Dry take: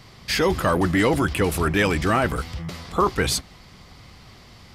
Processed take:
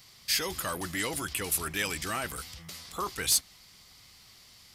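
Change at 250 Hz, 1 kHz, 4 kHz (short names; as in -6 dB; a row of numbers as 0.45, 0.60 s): -17.5, -13.0, -3.0 dB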